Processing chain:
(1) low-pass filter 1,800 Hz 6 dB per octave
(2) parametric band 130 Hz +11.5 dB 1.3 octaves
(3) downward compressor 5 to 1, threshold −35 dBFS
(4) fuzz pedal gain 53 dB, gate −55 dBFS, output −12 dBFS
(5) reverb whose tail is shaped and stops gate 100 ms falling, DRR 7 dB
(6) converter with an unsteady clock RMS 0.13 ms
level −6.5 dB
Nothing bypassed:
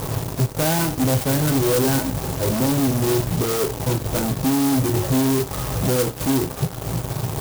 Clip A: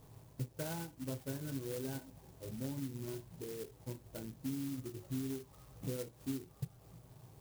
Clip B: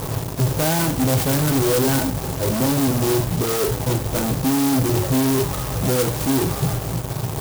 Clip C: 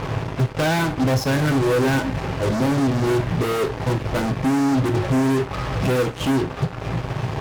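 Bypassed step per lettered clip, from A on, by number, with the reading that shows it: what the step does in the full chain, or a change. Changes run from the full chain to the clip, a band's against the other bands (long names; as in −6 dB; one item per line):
4, distortion level −3 dB
3, average gain reduction 6.0 dB
6, 8 kHz band −10.0 dB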